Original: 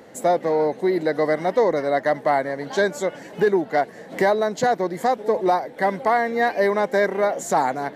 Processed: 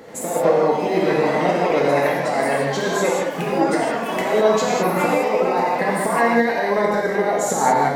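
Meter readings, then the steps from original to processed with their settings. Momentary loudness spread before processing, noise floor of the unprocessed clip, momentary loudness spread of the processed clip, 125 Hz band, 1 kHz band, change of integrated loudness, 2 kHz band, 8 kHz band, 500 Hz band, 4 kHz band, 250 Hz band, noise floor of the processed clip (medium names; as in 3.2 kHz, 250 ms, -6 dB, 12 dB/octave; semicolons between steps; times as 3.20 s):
3 LU, -41 dBFS, 4 LU, +6.5 dB, +2.5 dB, +2.5 dB, +3.0 dB, +8.5 dB, +2.0 dB, +5.5 dB, +4.5 dB, -26 dBFS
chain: compressor with a negative ratio -21 dBFS, ratio -0.5; gated-style reverb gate 230 ms flat, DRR -3 dB; ever faster or slower copies 84 ms, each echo +4 st, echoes 2, each echo -6 dB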